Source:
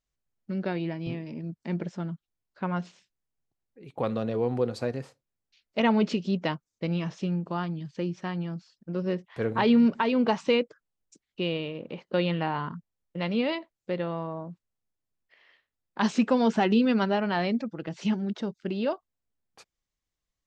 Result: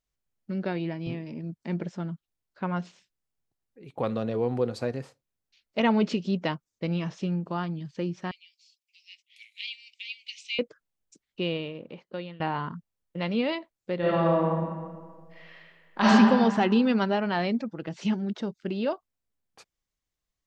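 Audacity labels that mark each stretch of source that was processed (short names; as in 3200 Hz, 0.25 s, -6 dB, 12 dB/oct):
8.310000	10.590000	steep high-pass 2200 Hz 96 dB/oct
11.520000	12.400000	fade out linear, to -20.5 dB
13.990000	16.080000	reverb throw, RT60 1.7 s, DRR -10 dB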